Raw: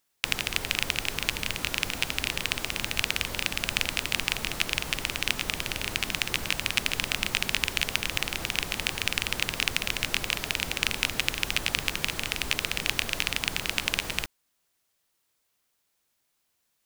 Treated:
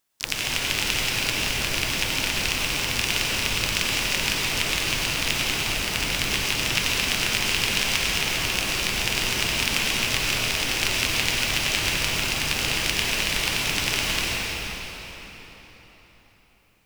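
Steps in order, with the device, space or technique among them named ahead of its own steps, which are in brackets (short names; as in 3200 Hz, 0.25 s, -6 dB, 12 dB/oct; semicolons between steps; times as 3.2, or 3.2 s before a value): shimmer-style reverb (harmoniser +12 st -6 dB; reverb RT60 4.3 s, pre-delay 87 ms, DRR -5 dB); gain -1 dB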